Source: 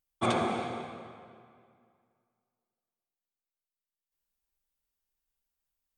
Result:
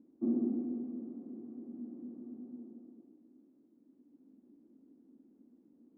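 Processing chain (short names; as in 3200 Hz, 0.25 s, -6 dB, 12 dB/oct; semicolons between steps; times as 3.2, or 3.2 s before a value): zero-crossing step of -34.5 dBFS; Butterworth band-pass 270 Hz, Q 3.3; gain +5 dB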